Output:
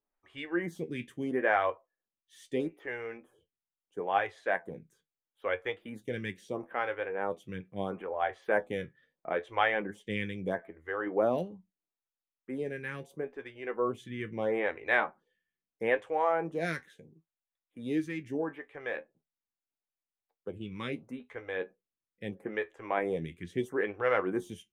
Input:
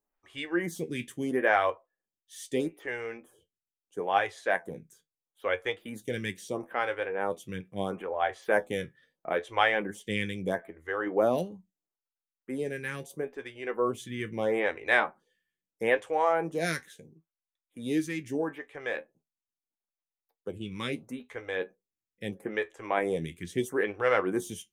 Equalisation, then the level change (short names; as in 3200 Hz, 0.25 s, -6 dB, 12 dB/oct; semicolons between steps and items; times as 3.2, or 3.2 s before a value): tone controls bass 0 dB, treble -12 dB; -2.5 dB